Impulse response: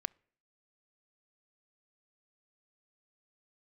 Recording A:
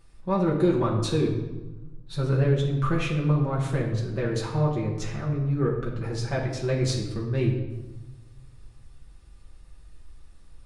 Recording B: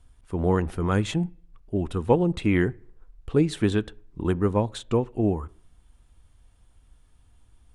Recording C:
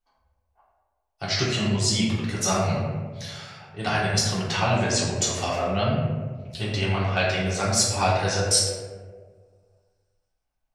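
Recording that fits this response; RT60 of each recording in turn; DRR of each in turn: B; 1.2, 0.55, 1.6 s; -4.0, 21.0, -8.0 dB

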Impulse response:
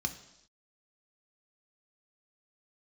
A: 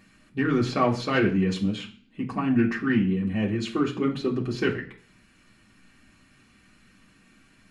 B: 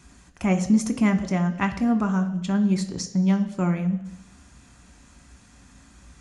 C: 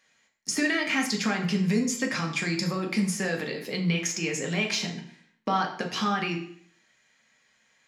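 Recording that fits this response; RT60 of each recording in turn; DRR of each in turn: B; 0.40 s, not exponential, 0.60 s; -4.0, 6.0, 1.0 dB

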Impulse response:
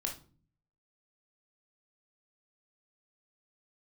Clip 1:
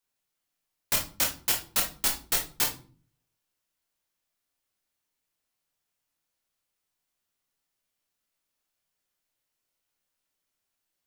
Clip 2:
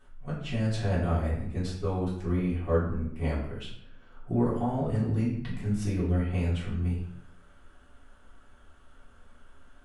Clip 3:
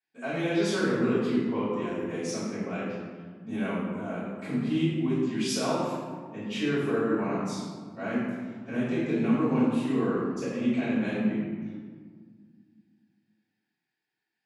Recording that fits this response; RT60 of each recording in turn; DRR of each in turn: 1; 0.40, 0.70, 1.7 s; 1.0, -8.5, -13.5 dB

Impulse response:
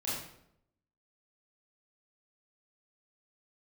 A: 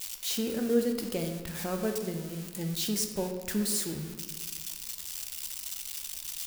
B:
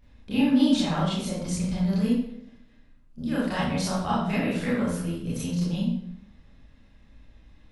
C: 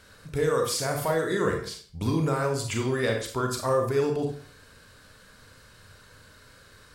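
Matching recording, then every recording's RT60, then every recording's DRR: B; 1.5, 0.75, 0.50 s; 4.5, -9.0, 1.5 dB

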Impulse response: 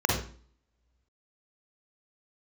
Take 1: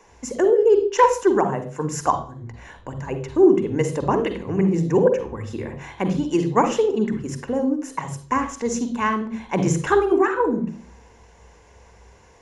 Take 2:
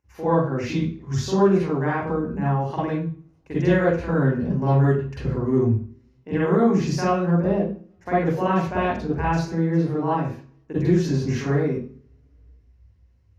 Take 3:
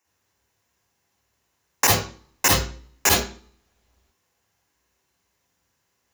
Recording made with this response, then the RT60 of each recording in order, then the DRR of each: 3; 0.45, 0.45, 0.45 s; 8.0, -8.0, -1.5 dB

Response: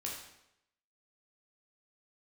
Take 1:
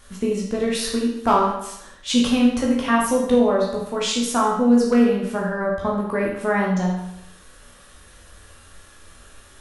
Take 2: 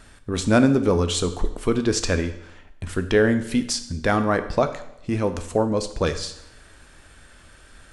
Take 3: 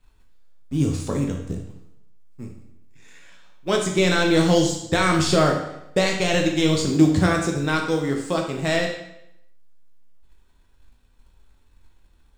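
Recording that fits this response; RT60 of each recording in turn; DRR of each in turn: 1; 0.85, 0.85, 0.85 s; -3.0, 8.5, 1.0 dB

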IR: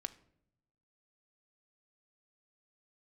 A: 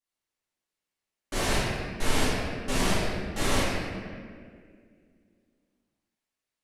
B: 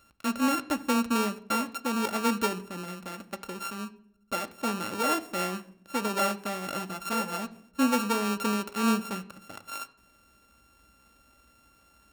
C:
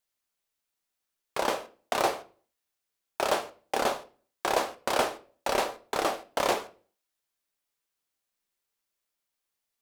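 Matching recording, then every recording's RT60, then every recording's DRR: B; 2.0, 0.70, 0.40 s; -14.0, 8.0, 9.5 dB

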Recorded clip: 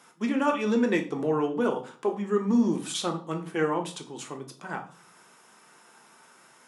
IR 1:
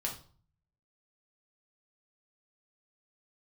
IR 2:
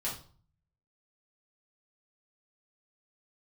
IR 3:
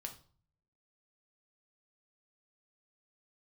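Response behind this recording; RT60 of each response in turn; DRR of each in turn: 3; 0.45, 0.45, 0.45 s; -1.5, -7.5, 3.0 dB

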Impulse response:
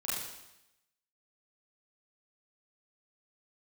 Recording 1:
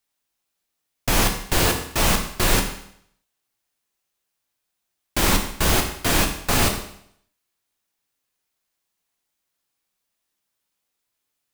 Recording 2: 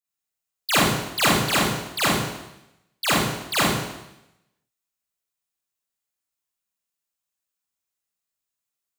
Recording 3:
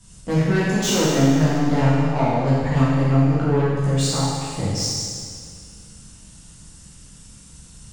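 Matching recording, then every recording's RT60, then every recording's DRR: 2; 0.65, 0.90, 2.0 s; 2.5, -9.5, -10.5 dB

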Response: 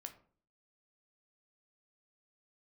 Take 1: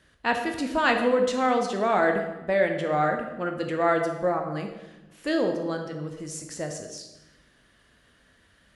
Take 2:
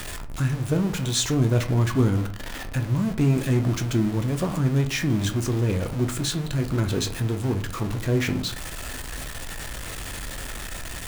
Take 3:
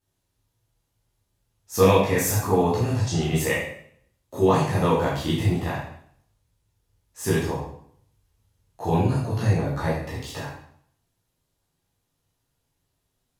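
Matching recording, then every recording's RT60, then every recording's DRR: 2; 1.0, 0.50, 0.65 s; 3.5, 5.5, -8.5 dB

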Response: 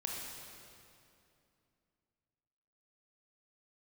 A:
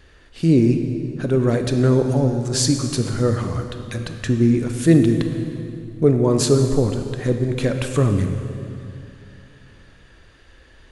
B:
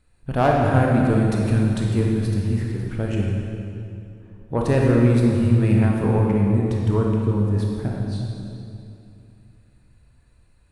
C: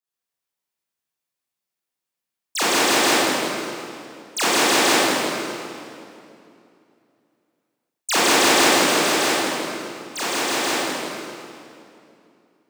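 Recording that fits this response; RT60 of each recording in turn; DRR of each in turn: B; 2.6, 2.6, 2.6 s; 6.0, -2.0, -11.0 dB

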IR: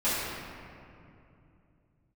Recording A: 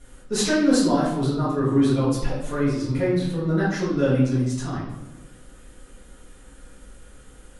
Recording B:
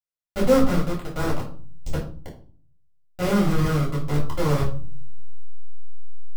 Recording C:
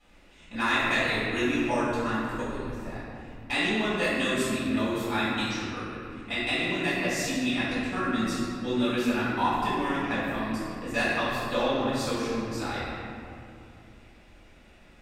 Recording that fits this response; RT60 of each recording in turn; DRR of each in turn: C; 1.0, 0.45, 2.7 s; -10.0, -6.0, -14.0 dB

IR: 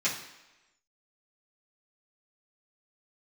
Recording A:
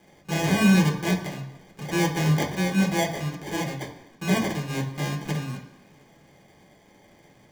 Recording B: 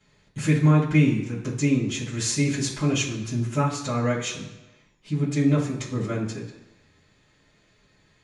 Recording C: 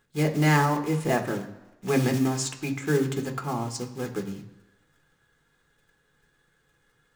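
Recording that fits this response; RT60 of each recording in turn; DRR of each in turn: B; 1.0, 1.0, 1.0 s; -1.5, -10.5, 3.0 dB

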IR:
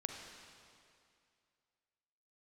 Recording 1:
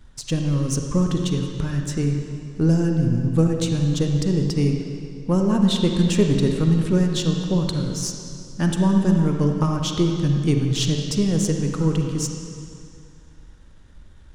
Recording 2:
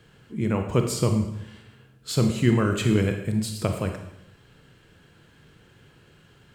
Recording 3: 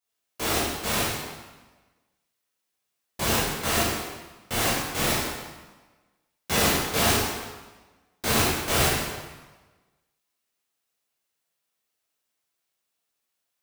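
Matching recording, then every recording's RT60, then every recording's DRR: 1; 2.4, 0.80, 1.2 s; 2.5, 5.0, -9.0 dB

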